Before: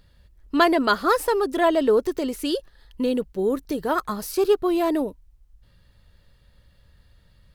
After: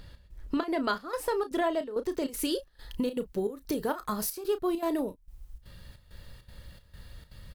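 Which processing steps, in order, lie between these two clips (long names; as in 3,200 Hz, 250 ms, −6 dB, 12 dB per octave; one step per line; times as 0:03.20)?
high-shelf EQ 8,100 Hz −3 dB, from 0:02.23 +6 dB
downward compressor 3 to 1, threshold −40 dBFS, peak gain reduction 19.5 dB
gate pattern "xx..xxxx.xx" 199 BPM −12 dB
double-tracking delay 33 ms −11.5 dB
level +8 dB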